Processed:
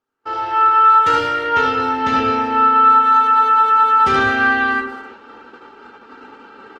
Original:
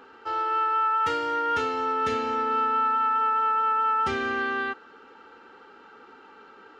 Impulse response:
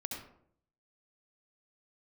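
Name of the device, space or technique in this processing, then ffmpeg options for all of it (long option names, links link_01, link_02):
speakerphone in a meeting room: -filter_complex "[0:a]asettb=1/sr,asplit=3[link_01][link_02][link_03];[link_01]atrim=end=1.344[link_04];[link_02]atrim=start=1.34:end=3.1,asetpts=PTS-STARTPTS,afade=type=in:duration=0.004:curve=qsin,afade=type=out:start_time=1.756:duration=0.004:curve=qsin,lowpass=5200[link_05];[link_03]atrim=start=3.096[link_06];[link_04][link_05]acrossfade=duration=0.004:curve1=hsin:curve2=qsin[link_07];[link_07][link_06]acrossfade=duration=0.004:curve1=qsin:curve2=hsin[link_08];[1:a]atrim=start_sample=2205[link_09];[link_08][link_09]afir=irnorm=-1:irlink=0,asplit=2[link_10][link_11];[link_11]adelay=280,highpass=300,lowpass=3400,asoftclip=type=hard:threshold=-23dB,volume=-17dB[link_12];[link_10][link_12]amix=inputs=2:normalize=0,dynaudnorm=framelen=170:gausssize=3:maxgain=11dB,agate=range=-30dB:threshold=-38dB:ratio=16:detection=peak" -ar 48000 -c:a libopus -b:a 20k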